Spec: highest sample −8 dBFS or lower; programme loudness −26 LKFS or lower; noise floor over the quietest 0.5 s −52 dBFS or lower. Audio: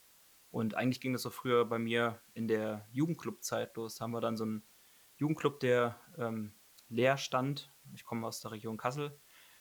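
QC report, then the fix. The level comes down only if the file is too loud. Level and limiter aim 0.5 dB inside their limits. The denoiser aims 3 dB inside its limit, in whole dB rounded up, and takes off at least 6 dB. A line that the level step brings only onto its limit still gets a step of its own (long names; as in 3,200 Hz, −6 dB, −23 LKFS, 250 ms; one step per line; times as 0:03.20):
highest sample −14.5 dBFS: in spec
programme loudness −35.5 LKFS: in spec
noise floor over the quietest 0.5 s −63 dBFS: in spec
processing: no processing needed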